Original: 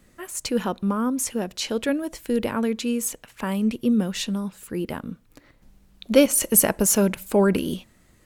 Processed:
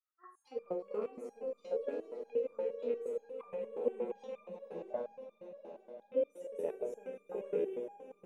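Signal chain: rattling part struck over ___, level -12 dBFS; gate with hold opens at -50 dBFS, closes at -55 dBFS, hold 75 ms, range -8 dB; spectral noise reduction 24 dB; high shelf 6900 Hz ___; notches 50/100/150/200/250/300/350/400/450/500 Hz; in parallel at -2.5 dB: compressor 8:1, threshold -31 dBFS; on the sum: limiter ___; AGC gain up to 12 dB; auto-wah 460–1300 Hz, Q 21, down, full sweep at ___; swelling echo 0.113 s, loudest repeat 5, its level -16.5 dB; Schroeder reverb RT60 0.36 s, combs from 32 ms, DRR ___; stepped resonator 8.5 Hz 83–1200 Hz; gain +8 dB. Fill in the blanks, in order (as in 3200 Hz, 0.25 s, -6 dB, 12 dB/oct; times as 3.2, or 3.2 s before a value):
-27 dBFS, +3.5 dB, -12 dBFS, -11 dBFS, 6 dB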